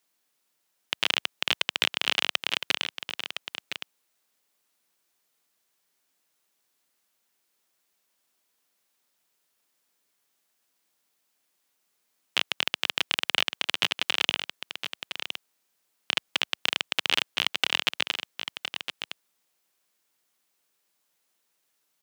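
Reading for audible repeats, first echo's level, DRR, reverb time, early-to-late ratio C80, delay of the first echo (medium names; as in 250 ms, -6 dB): 1, -9.0 dB, no reverb, no reverb, no reverb, 1013 ms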